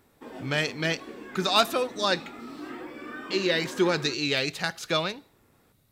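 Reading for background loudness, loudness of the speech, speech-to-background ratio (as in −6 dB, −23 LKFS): −41.0 LKFS, −27.0 LKFS, 14.0 dB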